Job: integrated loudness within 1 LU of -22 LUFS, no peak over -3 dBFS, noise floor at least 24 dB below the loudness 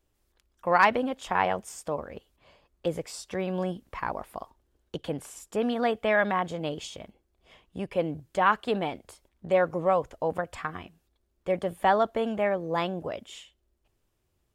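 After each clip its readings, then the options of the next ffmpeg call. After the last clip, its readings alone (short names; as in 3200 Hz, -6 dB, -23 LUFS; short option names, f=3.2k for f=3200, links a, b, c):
loudness -28.5 LUFS; peak -7.5 dBFS; loudness target -22.0 LUFS
-> -af "volume=6.5dB,alimiter=limit=-3dB:level=0:latency=1"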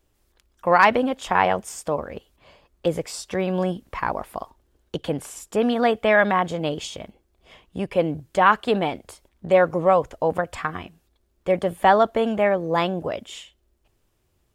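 loudness -22.0 LUFS; peak -3.0 dBFS; noise floor -68 dBFS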